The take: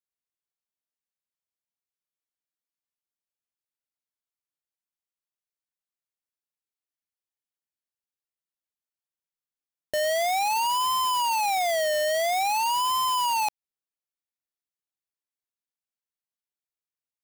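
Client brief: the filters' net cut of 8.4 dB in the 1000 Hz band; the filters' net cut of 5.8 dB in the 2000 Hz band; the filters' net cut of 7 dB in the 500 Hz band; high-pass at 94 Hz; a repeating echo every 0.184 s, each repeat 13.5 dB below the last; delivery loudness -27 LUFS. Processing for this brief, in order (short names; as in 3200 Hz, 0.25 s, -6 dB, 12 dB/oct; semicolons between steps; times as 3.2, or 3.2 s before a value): HPF 94 Hz; bell 500 Hz -6 dB; bell 1000 Hz -7 dB; bell 2000 Hz -5.5 dB; feedback echo 0.184 s, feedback 21%, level -13.5 dB; gain +2 dB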